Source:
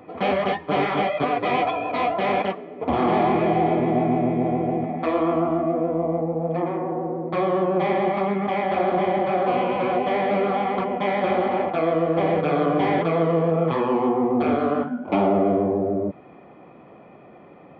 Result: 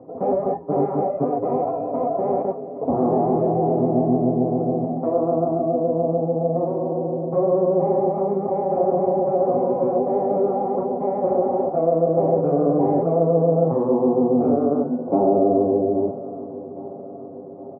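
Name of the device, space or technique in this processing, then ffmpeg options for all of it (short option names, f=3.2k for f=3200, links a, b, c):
under water: -af "highpass=90,lowpass=f=770:w=0.5412,lowpass=f=770:w=1.3066,equalizer=f=500:t=o:w=0.22:g=4.5,highshelf=f=2.9k:g=6.5,aecho=1:1:7.4:0.48,aecho=1:1:819|1638|2457|3276|4095|4914:0.168|0.0974|0.0565|0.0328|0.019|0.011,volume=1dB"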